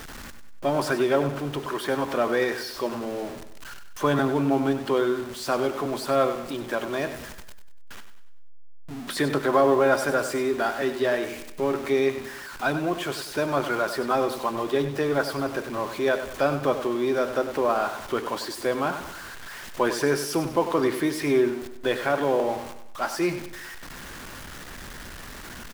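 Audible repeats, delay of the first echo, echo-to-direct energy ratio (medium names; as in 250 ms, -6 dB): 4, 97 ms, -9.5 dB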